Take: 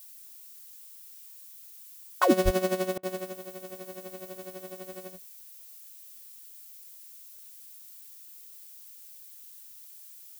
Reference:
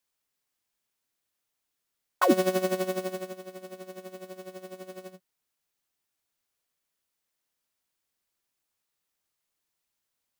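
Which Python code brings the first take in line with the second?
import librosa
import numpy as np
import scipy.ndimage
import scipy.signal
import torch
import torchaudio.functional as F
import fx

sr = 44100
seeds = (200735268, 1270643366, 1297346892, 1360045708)

y = fx.highpass(x, sr, hz=140.0, slope=24, at=(2.44, 2.56), fade=0.02)
y = fx.fix_interpolate(y, sr, at_s=(2.98,), length_ms=50.0)
y = fx.noise_reduce(y, sr, print_start_s=7.08, print_end_s=7.58, reduce_db=30.0)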